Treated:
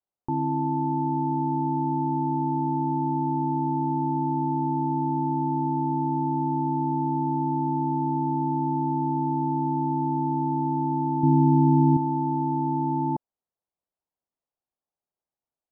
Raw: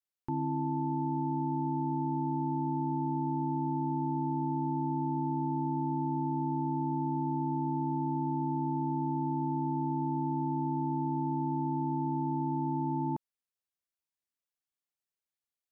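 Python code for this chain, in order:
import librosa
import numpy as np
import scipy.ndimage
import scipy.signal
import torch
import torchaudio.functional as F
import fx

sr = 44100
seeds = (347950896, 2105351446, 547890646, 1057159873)

y = fx.peak_eq(x, sr, hz=160.0, db=10.5, octaves=2.7, at=(11.23, 11.97))
y = fx.lowpass_res(y, sr, hz=800.0, q=1.6)
y = y * librosa.db_to_amplitude(5.0)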